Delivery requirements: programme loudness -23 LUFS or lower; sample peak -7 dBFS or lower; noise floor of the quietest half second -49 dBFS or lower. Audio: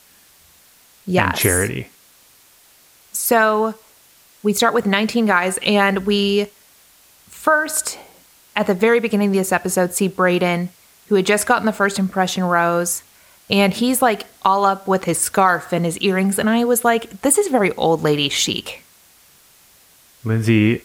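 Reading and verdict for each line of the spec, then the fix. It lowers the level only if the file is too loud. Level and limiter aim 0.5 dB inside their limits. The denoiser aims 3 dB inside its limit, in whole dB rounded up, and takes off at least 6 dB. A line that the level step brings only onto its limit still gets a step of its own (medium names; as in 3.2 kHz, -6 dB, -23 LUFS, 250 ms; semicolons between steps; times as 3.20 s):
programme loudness -17.5 LUFS: fail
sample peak -2.0 dBFS: fail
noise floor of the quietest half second -51 dBFS: pass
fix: trim -6 dB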